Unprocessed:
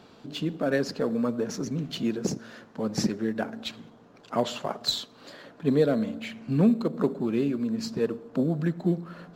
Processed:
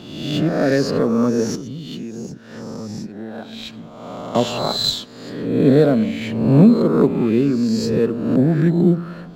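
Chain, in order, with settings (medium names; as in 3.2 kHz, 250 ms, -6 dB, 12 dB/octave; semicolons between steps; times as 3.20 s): reverse spectral sustain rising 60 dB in 1.05 s; bass shelf 350 Hz +8 dB; 1.55–4.35 s: compression 6:1, threshold -32 dBFS, peak gain reduction 17.5 dB; trim +3.5 dB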